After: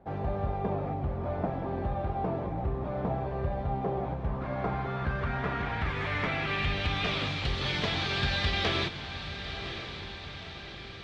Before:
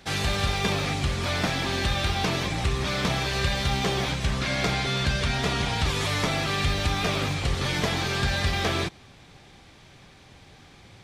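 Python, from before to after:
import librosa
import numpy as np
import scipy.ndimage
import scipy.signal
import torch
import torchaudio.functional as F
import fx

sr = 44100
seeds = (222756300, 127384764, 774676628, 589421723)

y = fx.echo_diffused(x, sr, ms=1037, feedback_pct=51, wet_db=-12.0)
y = fx.rider(y, sr, range_db=4, speed_s=2.0)
y = fx.filter_sweep_lowpass(y, sr, from_hz=730.0, to_hz=3700.0, start_s=4.02, end_s=7.3, q=1.7)
y = y * librosa.db_to_amplitude(-5.5)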